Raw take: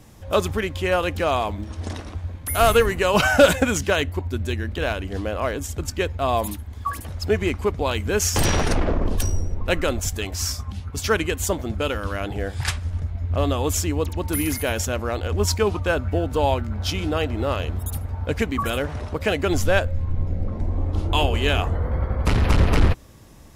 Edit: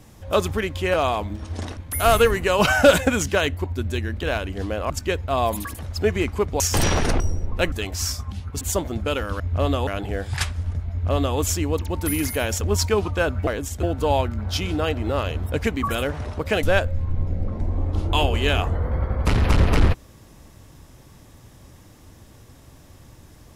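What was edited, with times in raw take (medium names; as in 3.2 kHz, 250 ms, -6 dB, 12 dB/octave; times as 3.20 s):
0.94–1.22 s: delete
2.05–2.32 s: delete
5.45–5.81 s: move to 16.16 s
6.56–6.91 s: delete
7.86–8.22 s: delete
8.82–9.29 s: delete
9.81–10.12 s: delete
11.01–11.35 s: delete
13.18–13.65 s: copy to 12.14 s
14.88–15.30 s: delete
17.85–18.27 s: delete
19.38–19.63 s: delete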